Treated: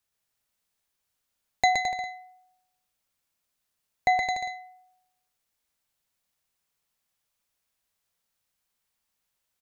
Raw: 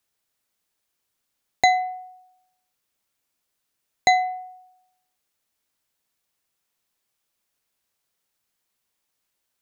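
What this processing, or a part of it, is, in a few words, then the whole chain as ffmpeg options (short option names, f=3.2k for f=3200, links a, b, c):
low shelf boost with a cut just above: -filter_complex "[0:a]aecho=1:1:120|216|292.8|354.2|403.4:0.631|0.398|0.251|0.158|0.1,asettb=1/sr,asplit=3[a][b][c];[a]atrim=end=1.884[d];[b]atrim=start=1.88:end=4.23,asetpts=PTS-STARTPTS,afade=t=in:d=0.004:c=qsin,afade=t=out:st=2.346:d=0.004:c=qsin,acrossover=split=2900[e][f];[f]acompressor=threshold=-39dB:ratio=4:attack=1:release=60[g];[e][g]amix=inputs=2:normalize=0[h];[c]atrim=start=4.226[i];[d][h]acrossfade=d=0.004:c1=hsin:c2=qsin[j];[j][i]acrossfade=d=0.004:c1=qsin:c2=hsin,lowshelf=f=100:g=5.5,equalizer=f=340:t=o:w=0.64:g=-4.5,volume=-4.5dB"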